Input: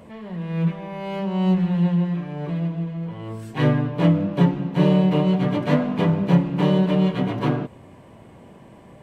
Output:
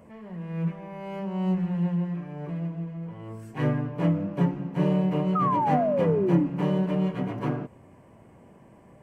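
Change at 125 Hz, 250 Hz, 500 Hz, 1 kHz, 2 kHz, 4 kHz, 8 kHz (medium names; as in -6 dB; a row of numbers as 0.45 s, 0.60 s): -6.5 dB, -6.0 dB, -3.5 dB, +1.0 dB, -7.5 dB, -12.5 dB, no reading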